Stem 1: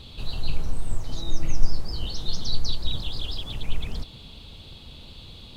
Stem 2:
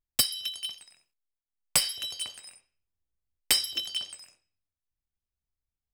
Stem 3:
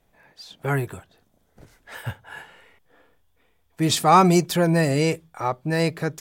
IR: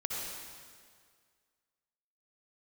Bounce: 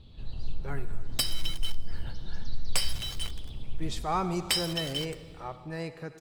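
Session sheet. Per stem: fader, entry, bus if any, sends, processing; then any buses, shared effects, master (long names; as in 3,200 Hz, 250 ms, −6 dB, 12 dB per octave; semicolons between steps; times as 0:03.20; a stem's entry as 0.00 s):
−20.0 dB, 0.00 s, send −4.5 dB, low-shelf EQ 490 Hz +10.5 dB; downward compressor 2 to 1, threshold −7 dBFS, peak gain reduction 7 dB
−1.5 dB, 1.00 s, send −22.5 dB, bit-depth reduction 6 bits, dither none
−16.0 dB, 0.00 s, send −12 dB, no processing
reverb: on, RT60 1.9 s, pre-delay 53 ms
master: high-shelf EQ 8,400 Hz −10 dB; soft clipping −11 dBFS, distortion −29 dB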